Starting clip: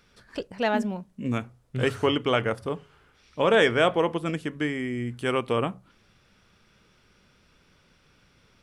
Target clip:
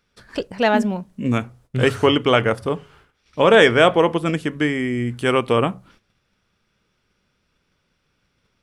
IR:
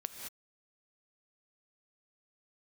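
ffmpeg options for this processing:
-af "agate=range=-15dB:threshold=-57dB:ratio=16:detection=peak,volume=7.5dB"

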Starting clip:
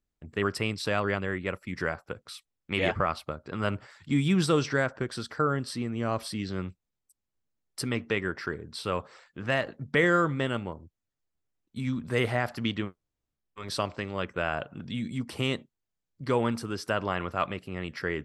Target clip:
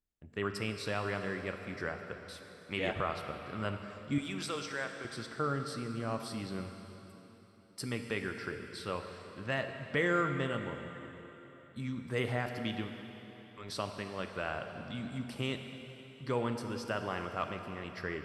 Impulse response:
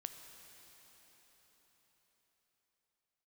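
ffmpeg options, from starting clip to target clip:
-filter_complex "[0:a]asettb=1/sr,asplit=3[a][b][c];[a]atrim=end=4.184[d];[b]atrim=start=4.18:end=5.05,asetpts=PTS-STARTPTS,afade=t=in:d=0.004:c=qsin,afade=t=out:st=0.866:d=0.004:c=qsin,highpass=f=1k:p=1[e];[c]atrim=start=5.046[f];[d][e]acrossfade=d=0.004:c1=hsin:c2=qsin[g];[g][f]acrossfade=d=0.004:c1=qsin:c2=hsin[h];[1:a]atrim=start_sample=2205,asetrate=61740,aresample=44100[i];[h][i]afir=irnorm=-1:irlink=0"

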